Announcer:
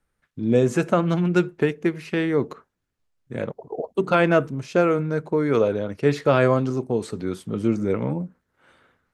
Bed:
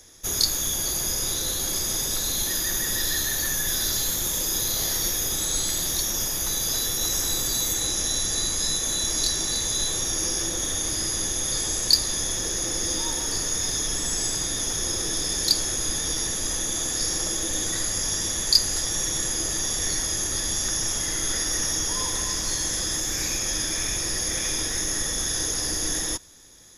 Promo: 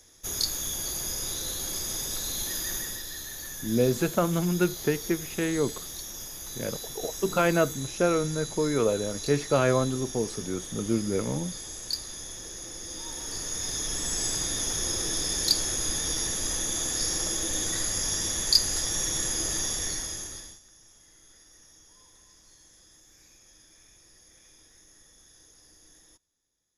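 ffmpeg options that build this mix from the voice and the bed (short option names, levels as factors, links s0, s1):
-filter_complex "[0:a]adelay=3250,volume=0.562[s0];[1:a]volume=1.68,afade=t=out:st=2.75:d=0.28:silence=0.446684,afade=t=in:st=12.87:d=1.45:silence=0.298538,afade=t=out:st=19.59:d=1.01:silence=0.0421697[s1];[s0][s1]amix=inputs=2:normalize=0"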